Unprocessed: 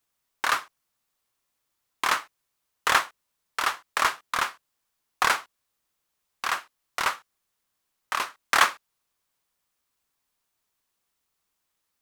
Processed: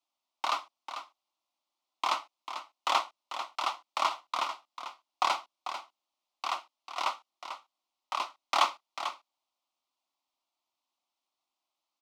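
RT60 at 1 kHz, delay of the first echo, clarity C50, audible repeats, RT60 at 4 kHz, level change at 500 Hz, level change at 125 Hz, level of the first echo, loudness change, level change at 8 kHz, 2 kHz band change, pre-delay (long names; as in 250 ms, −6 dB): no reverb audible, 444 ms, no reverb audible, 1, no reverb audible, −3.0 dB, below −20 dB, −10.0 dB, −7.0 dB, −11.0 dB, −12.5 dB, no reverb audible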